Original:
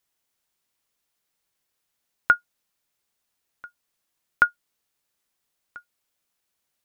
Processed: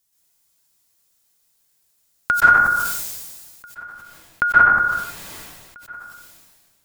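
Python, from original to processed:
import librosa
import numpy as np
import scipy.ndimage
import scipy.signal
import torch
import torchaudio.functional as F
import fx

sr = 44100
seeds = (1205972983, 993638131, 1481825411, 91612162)

y = fx.bass_treble(x, sr, bass_db=7, treble_db=fx.steps((0.0, 12.0), (3.65, -3.0), (5.77, 4.0)))
y = fx.rev_plate(y, sr, seeds[0], rt60_s=0.51, hf_ratio=0.55, predelay_ms=115, drr_db=-6.5)
y = fx.sustainer(y, sr, db_per_s=34.0)
y = y * librosa.db_to_amplitude(-2.5)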